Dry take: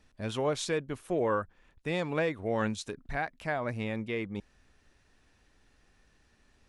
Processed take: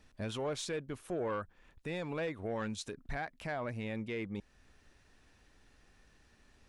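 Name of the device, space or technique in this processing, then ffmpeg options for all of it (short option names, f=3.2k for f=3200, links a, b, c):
soft clipper into limiter: -af "asoftclip=type=tanh:threshold=-22.5dB,alimiter=level_in=6.5dB:limit=-24dB:level=0:latency=1:release=309,volume=-6.5dB,volume=1dB"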